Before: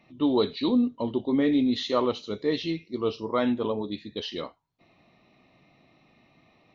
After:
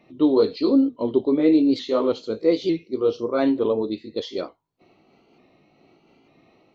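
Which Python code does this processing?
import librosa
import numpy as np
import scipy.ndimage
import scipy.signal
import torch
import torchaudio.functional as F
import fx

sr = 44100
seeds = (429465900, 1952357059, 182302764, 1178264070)

y = fx.pitch_ramps(x, sr, semitones=2.0, every_ms=897)
y = fx.peak_eq(y, sr, hz=400.0, db=9.5, octaves=1.3)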